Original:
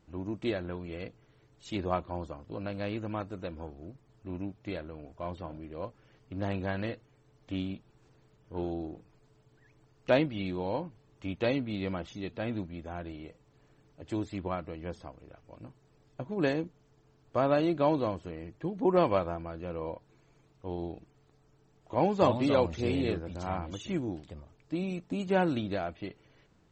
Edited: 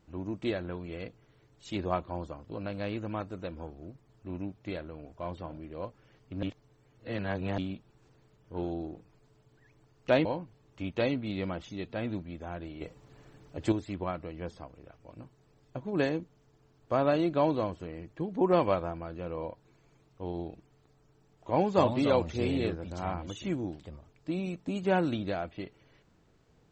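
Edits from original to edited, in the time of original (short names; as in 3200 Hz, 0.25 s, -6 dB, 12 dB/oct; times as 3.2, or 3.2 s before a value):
6.43–7.58 reverse
10.25–10.69 cut
13.25–14.16 gain +8 dB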